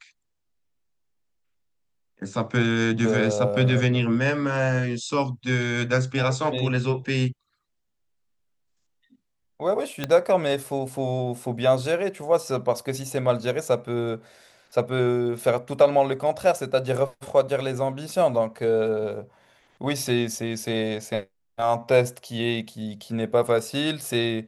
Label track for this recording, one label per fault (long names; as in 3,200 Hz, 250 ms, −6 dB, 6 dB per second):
10.040000	10.040000	click −11 dBFS